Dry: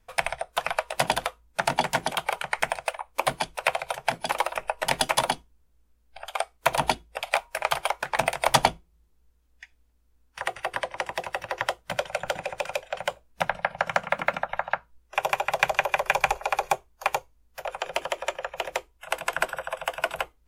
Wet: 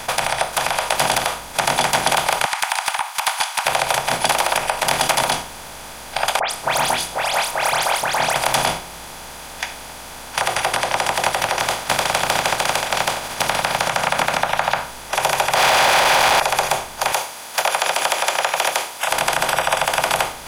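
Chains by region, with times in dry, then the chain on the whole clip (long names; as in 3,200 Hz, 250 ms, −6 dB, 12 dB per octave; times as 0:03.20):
0:02.45–0:03.66: Butterworth high-pass 810 Hz 72 dB per octave + downward compressor 2 to 1, threshold −41 dBFS
0:06.39–0:08.36: double-tracking delay 25 ms −3 dB + downward compressor 2 to 1, threshold −45 dBFS + all-pass dispersion highs, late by 120 ms, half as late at 3,000 Hz
0:11.59–0:13.86: compressing power law on the bin magnitudes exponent 0.52 + low-pass filter 3,300 Hz 6 dB per octave
0:15.55–0:16.40: sign of each sample alone + three-way crossover with the lows and the highs turned down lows −19 dB, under 480 Hz, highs −21 dB, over 4,100 Hz
0:17.12–0:19.12: high-pass filter 470 Hz + spectral tilt +2 dB per octave
whole clip: compressor on every frequency bin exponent 0.4; bass and treble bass −4 dB, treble +3 dB; brickwall limiter −8.5 dBFS; level +4.5 dB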